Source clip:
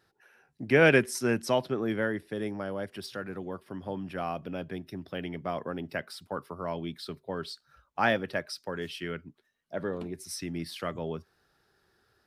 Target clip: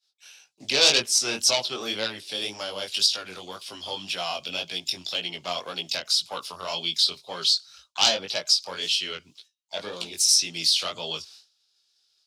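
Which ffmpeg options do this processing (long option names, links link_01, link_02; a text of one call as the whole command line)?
ffmpeg -i in.wav -filter_complex "[0:a]agate=range=-33dB:threshold=-56dB:ratio=3:detection=peak,acrossover=split=590 7300:gain=0.178 1 0.0708[link_01][link_02][link_03];[link_01][link_02][link_03]amix=inputs=3:normalize=0,acrossover=split=1500[link_04][link_05];[link_05]acompressor=threshold=-49dB:ratio=6[link_06];[link_04][link_06]amix=inputs=2:normalize=0,asplit=2[link_07][link_08];[link_08]asetrate=58866,aresample=44100,atempo=0.749154,volume=-17dB[link_09];[link_07][link_09]amix=inputs=2:normalize=0,aeval=exprs='0.15*(cos(1*acos(clip(val(0)/0.15,-1,1)))-cos(1*PI/2))+0.0473*(cos(5*acos(clip(val(0)/0.15,-1,1)))-cos(5*PI/2))':channel_layout=same,flanger=delay=17:depth=5.7:speed=1.9,aexciter=amount=10:drive=9:freq=2800" out.wav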